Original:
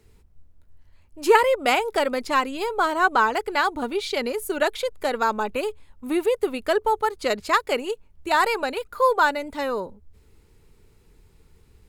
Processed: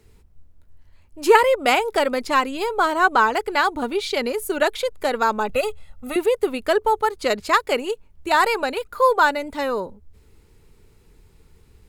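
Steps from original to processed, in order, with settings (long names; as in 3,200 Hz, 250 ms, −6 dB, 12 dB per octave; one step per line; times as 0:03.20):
0:05.49–0:06.16: comb filter 1.5 ms, depth 98%
level +2.5 dB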